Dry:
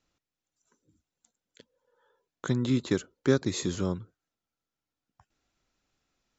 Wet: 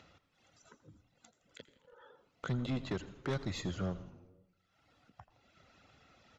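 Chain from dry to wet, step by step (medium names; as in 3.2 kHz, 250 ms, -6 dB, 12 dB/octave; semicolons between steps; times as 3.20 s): high-pass 65 Hz 24 dB/octave; reverb removal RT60 0.73 s; low-pass 3.5 kHz 12 dB/octave; comb 1.5 ms, depth 37%; in parallel at -2.5 dB: upward compressor, threshold -33 dBFS; on the sum: saturation -22.5 dBFS, distortion -7 dB; frequency-shifting echo 82 ms, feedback 64%, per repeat -110 Hz, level -17 dB; on a send at -16.5 dB: reverberation RT60 1.0 s, pre-delay 86 ms; on the sum: trim -7 dB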